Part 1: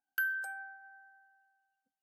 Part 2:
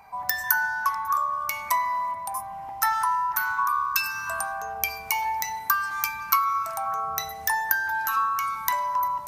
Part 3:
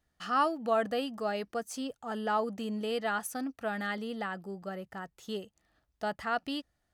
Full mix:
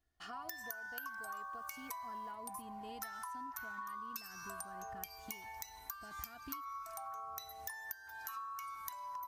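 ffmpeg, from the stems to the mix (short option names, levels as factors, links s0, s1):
-filter_complex "[0:a]highshelf=f=2400:g=12,acompressor=threshold=0.0224:ratio=6,acrusher=bits=10:mix=0:aa=0.000001,adelay=800,volume=1.12[s0];[1:a]adynamicequalizer=threshold=0.0112:dfrequency=3200:dqfactor=0.7:tfrequency=3200:tqfactor=0.7:attack=5:release=100:ratio=0.375:range=2.5:mode=boostabove:tftype=highshelf,adelay=200,volume=0.224[s1];[2:a]asubboost=boost=10:cutoff=150,acompressor=threshold=0.0141:ratio=6,volume=0.398[s2];[s0][s1][s2]amix=inputs=3:normalize=0,aecho=1:1:2.8:0.58,acompressor=threshold=0.00708:ratio=6"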